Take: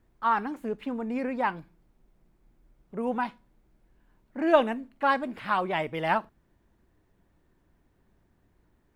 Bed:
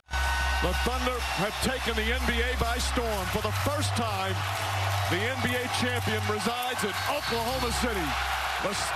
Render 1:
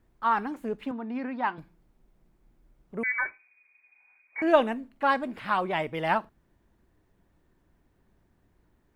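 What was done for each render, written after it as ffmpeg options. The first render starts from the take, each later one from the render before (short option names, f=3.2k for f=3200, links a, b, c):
-filter_complex "[0:a]asettb=1/sr,asplit=3[a][b][c];[a]atrim=end=0.914[d];[b]atrim=start=0.91:end=1.58,asetpts=PTS-STARTPTS,afade=t=in:d=0.004:c=qsin,afade=t=out:st=0.666:d=0.004:c=qsin,highpass=f=130:w=0.5412,highpass=f=130:w=1.3066,equalizer=f=180:t=q:w=4:g=-9,equalizer=f=500:t=q:w=4:g=-10,equalizer=f=2.3k:t=q:w=4:g=-5,lowpass=f=4.5k:w=0.5412,lowpass=f=4.5k:w=1.3066[e];[c]atrim=start=1.576[f];[d][e]acrossfade=d=0.004:c1=hsin:c2=qsin[g];[g][f]acrossfade=d=0.004:c1=qsin:c2=hsin,asettb=1/sr,asplit=3[h][i][j];[h]atrim=end=3.034[k];[i]atrim=start=3.03:end=4.42,asetpts=PTS-STARTPTS,afade=t=in:d=0.004:c=qsin,afade=t=out:st=1.386:d=0.004:c=qsin,lowpass=f=2.1k:t=q:w=0.5098,lowpass=f=2.1k:t=q:w=0.6013,lowpass=f=2.1k:t=q:w=0.9,lowpass=f=2.1k:t=q:w=2.563,afreqshift=-2500[l];[j]atrim=start=4.416[m];[k][l]acrossfade=d=0.004:c1=hsin:c2=qsin[n];[n][m]acrossfade=d=0.004:c1=qsin:c2=hsin"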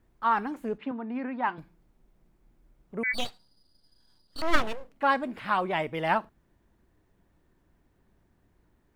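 -filter_complex "[0:a]asettb=1/sr,asplit=3[a][b][c];[a]atrim=end=0.784[d];[b]atrim=start=0.78:end=1.49,asetpts=PTS-STARTPTS,afade=t=in:d=0.004:c=qsin,afade=t=out:st=0.706:d=0.004:c=qsin,highpass=120,lowpass=3.3k[e];[c]atrim=start=1.486[f];[d][e]acrossfade=d=0.004:c1=hsin:c2=qsin[g];[g][f]acrossfade=d=0.004:c1=qsin:c2=hsin,asplit=3[h][i][j];[h]afade=t=out:st=3.13:d=0.02[k];[i]aeval=exprs='abs(val(0))':c=same,afade=t=in:st=3.13:d=0.02,afade=t=out:st=4.93:d=0.02[l];[j]afade=t=in:st=4.93:d=0.02[m];[k][l][m]amix=inputs=3:normalize=0"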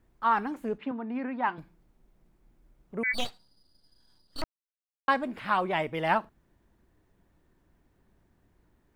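-filter_complex "[0:a]asplit=3[a][b][c];[a]atrim=end=4.44,asetpts=PTS-STARTPTS,afade=t=out:st=4.436:d=0.004:c=hsin[d];[b]atrim=start=4.44:end=5.08,asetpts=PTS-STARTPTS,volume=0[e];[c]atrim=start=5.08,asetpts=PTS-STARTPTS,afade=t=in:d=0.004:c=hsin[f];[d][e][f]concat=n=3:v=0:a=1"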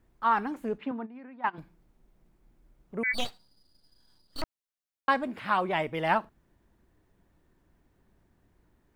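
-filter_complex "[0:a]asplit=3[a][b][c];[a]afade=t=out:st=1.05:d=0.02[d];[b]agate=range=-13dB:threshold=-27dB:ratio=16:release=100:detection=peak,afade=t=in:st=1.05:d=0.02,afade=t=out:st=1.53:d=0.02[e];[c]afade=t=in:st=1.53:d=0.02[f];[d][e][f]amix=inputs=3:normalize=0,asettb=1/sr,asplit=3[g][h][i];[g]atrim=end=3.274[j];[h]atrim=start=3.27:end=4.41,asetpts=PTS-STARTPTS,afade=t=in:d=0.004:c=qsin,afade=t=out:st=1.136:d=0.004:c=qsin,acrusher=bits=5:mode=log:mix=0:aa=0.000001[k];[i]atrim=start=4.406[l];[j][k]acrossfade=d=0.004:c1=hsin:c2=qsin[m];[m][l]acrossfade=d=0.004:c1=qsin:c2=hsin,asettb=1/sr,asplit=3[n][o][p];[n]atrim=end=5.274[q];[o]atrim=start=5.27:end=5.69,asetpts=PTS-STARTPTS,afade=t=in:d=0.004:c=qsin,afade=t=out:st=0.416:d=0.004:c=qsin,highpass=57[r];[p]atrim=start=5.686[s];[q][r]acrossfade=d=0.004:c1=hsin:c2=qsin[t];[t][s]acrossfade=d=0.004:c1=qsin:c2=hsin"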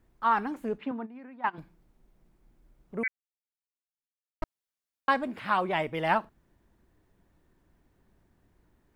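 -filter_complex "[0:a]asplit=3[a][b][c];[a]atrim=end=3.08,asetpts=PTS-STARTPTS,afade=t=out:st=3.076:d=0.004:c=hsin[d];[b]atrim=start=3.08:end=4.42,asetpts=PTS-STARTPTS,volume=0[e];[c]atrim=start=4.42,asetpts=PTS-STARTPTS,afade=t=in:d=0.004:c=hsin[f];[d][e][f]concat=n=3:v=0:a=1"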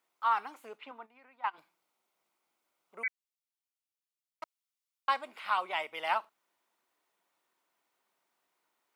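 -af "highpass=1k,equalizer=f=1.7k:w=6.5:g=-11.5"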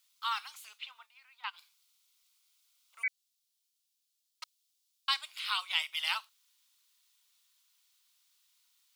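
-af "highpass=f=1.2k:w=0.5412,highpass=f=1.2k:w=1.3066,highshelf=f=2.6k:t=q:w=1.5:g=12"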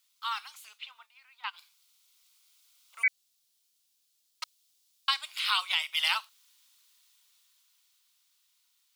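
-af "dynaudnorm=f=290:g=13:m=7.5dB,alimiter=limit=-14dB:level=0:latency=1:release=266"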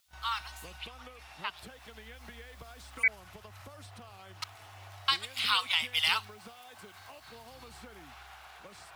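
-filter_complex "[1:a]volume=-22dB[a];[0:a][a]amix=inputs=2:normalize=0"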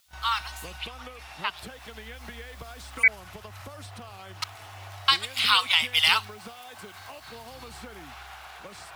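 -af "volume=7dB"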